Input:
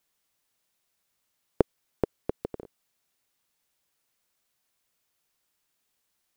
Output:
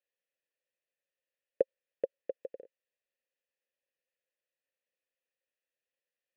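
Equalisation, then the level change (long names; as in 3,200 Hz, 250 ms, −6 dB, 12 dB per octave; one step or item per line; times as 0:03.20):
dynamic equaliser 570 Hz, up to +7 dB, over −45 dBFS, Q 4.2
formant filter e
0.0 dB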